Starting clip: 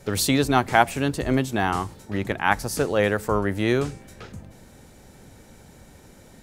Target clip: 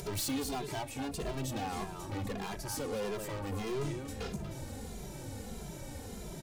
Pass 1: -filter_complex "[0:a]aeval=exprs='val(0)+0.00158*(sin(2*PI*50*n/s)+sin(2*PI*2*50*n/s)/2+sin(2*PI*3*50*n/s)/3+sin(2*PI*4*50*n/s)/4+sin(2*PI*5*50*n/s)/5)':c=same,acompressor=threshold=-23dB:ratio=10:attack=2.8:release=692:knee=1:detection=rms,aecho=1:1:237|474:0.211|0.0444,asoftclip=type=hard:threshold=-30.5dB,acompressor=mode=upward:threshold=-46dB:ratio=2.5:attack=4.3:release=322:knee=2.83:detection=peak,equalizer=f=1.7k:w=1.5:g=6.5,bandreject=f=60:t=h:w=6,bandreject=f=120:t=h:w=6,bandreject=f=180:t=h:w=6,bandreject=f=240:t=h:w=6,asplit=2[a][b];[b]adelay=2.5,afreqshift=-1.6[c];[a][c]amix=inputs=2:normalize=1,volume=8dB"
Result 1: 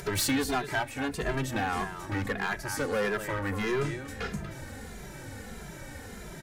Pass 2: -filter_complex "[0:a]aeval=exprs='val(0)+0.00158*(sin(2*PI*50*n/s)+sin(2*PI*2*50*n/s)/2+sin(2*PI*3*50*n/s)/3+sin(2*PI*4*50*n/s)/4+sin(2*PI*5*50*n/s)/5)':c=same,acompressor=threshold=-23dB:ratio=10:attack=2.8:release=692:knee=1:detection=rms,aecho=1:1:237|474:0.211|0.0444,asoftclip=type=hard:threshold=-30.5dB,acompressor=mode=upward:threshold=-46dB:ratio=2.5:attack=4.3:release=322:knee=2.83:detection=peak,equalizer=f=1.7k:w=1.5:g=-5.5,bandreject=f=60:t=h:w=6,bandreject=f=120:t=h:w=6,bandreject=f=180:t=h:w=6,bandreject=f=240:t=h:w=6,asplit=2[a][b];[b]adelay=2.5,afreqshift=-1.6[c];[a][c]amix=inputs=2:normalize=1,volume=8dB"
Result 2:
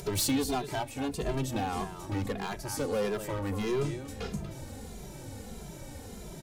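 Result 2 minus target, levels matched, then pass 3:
hard clip: distortion -5 dB
-filter_complex "[0:a]aeval=exprs='val(0)+0.00158*(sin(2*PI*50*n/s)+sin(2*PI*2*50*n/s)/2+sin(2*PI*3*50*n/s)/3+sin(2*PI*4*50*n/s)/4+sin(2*PI*5*50*n/s)/5)':c=same,acompressor=threshold=-23dB:ratio=10:attack=2.8:release=692:knee=1:detection=rms,aecho=1:1:237|474:0.211|0.0444,asoftclip=type=hard:threshold=-38.5dB,acompressor=mode=upward:threshold=-46dB:ratio=2.5:attack=4.3:release=322:knee=2.83:detection=peak,equalizer=f=1.7k:w=1.5:g=-5.5,bandreject=f=60:t=h:w=6,bandreject=f=120:t=h:w=6,bandreject=f=180:t=h:w=6,bandreject=f=240:t=h:w=6,asplit=2[a][b];[b]adelay=2.5,afreqshift=-1.6[c];[a][c]amix=inputs=2:normalize=1,volume=8dB"

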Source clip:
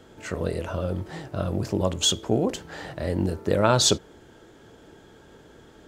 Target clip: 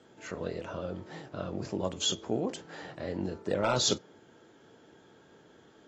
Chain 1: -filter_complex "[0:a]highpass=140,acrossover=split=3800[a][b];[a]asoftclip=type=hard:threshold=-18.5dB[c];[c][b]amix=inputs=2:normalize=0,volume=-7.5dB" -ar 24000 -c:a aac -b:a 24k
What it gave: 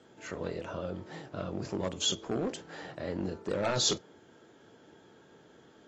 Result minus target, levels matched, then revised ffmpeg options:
hard clip: distortion +10 dB
-filter_complex "[0:a]highpass=140,acrossover=split=3800[a][b];[a]asoftclip=type=hard:threshold=-11dB[c];[c][b]amix=inputs=2:normalize=0,volume=-7.5dB" -ar 24000 -c:a aac -b:a 24k

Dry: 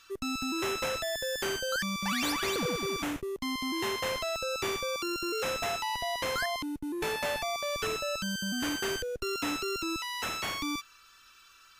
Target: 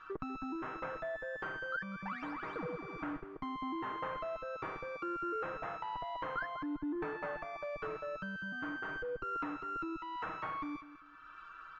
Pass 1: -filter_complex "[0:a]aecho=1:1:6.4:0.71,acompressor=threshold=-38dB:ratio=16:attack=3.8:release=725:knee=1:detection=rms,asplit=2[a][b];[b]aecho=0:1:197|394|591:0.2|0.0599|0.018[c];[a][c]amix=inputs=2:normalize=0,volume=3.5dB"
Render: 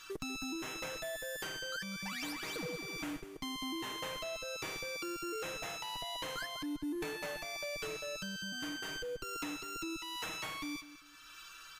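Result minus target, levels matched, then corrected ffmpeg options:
1000 Hz band -6.5 dB
-filter_complex "[0:a]aecho=1:1:6.4:0.71,acompressor=threshold=-38dB:ratio=16:attack=3.8:release=725:knee=1:detection=rms,lowpass=f=1.3k:t=q:w=2.3,asplit=2[a][b];[b]aecho=0:1:197|394|591:0.2|0.0599|0.018[c];[a][c]amix=inputs=2:normalize=0,volume=3.5dB"

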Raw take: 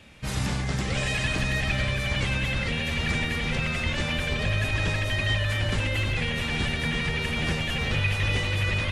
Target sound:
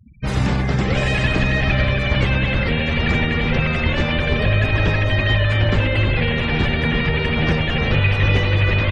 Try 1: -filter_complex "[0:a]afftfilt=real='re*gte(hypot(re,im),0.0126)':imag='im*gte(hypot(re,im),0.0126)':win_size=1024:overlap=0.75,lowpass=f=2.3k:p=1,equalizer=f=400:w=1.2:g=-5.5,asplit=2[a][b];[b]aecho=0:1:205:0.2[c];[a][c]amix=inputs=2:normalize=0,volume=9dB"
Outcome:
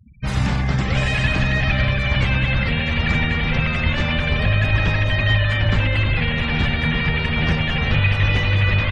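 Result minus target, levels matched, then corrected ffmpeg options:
echo 0.109 s early; 500 Hz band -4.5 dB
-filter_complex "[0:a]afftfilt=real='re*gte(hypot(re,im),0.0126)':imag='im*gte(hypot(re,im),0.0126)':win_size=1024:overlap=0.75,lowpass=f=2.3k:p=1,equalizer=f=400:w=1.2:g=2.5,asplit=2[a][b];[b]aecho=0:1:314:0.2[c];[a][c]amix=inputs=2:normalize=0,volume=9dB"

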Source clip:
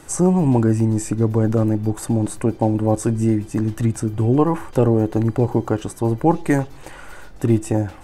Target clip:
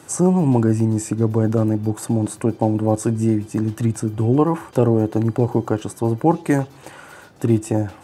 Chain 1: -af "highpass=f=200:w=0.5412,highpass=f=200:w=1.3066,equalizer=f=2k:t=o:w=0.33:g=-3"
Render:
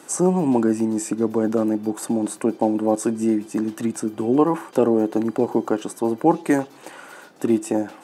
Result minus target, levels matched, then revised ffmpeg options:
125 Hz band -11.0 dB
-af "highpass=f=91:w=0.5412,highpass=f=91:w=1.3066,equalizer=f=2k:t=o:w=0.33:g=-3"

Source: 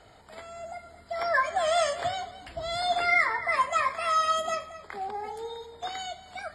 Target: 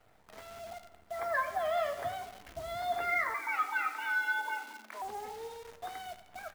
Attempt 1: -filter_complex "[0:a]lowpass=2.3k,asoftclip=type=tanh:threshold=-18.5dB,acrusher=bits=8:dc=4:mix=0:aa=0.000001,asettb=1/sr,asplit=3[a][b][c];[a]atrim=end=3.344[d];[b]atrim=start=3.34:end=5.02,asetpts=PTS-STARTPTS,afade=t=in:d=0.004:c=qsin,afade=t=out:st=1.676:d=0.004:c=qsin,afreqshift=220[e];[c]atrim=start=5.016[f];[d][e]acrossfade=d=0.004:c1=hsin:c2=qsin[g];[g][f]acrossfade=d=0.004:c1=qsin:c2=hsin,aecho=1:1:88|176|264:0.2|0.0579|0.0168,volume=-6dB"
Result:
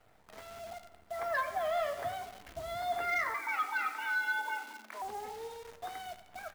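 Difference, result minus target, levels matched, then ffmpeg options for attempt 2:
soft clip: distortion +11 dB
-filter_complex "[0:a]lowpass=2.3k,asoftclip=type=tanh:threshold=-12dB,acrusher=bits=8:dc=4:mix=0:aa=0.000001,asettb=1/sr,asplit=3[a][b][c];[a]atrim=end=3.344[d];[b]atrim=start=3.34:end=5.02,asetpts=PTS-STARTPTS,afade=t=in:d=0.004:c=qsin,afade=t=out:st=1.676:d=0.004:c=qsin,afreqshift=220[e];[c]atrim=start=5.016[f];[d][e]acrossfade=d=0.004:c1=hsin:c2=qsin[g];[g][f]acrossfade=d=0.004:c1=qsin:c2=hsin,aecho=1:1:88|176|264:0.2|0.0579|0.0168,volume=-6dB"

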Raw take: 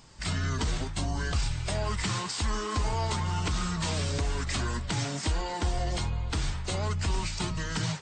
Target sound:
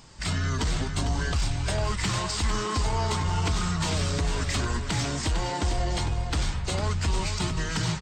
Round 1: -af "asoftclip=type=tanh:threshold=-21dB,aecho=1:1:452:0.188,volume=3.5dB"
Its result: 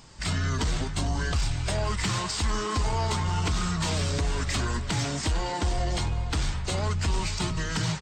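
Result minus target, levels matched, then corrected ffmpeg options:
echo-to-direct -6.5 dB
-af "asoftclip=type=tanh:threshold=-21dB,aecho=1:1:452:0.398,volume=3.5dB"

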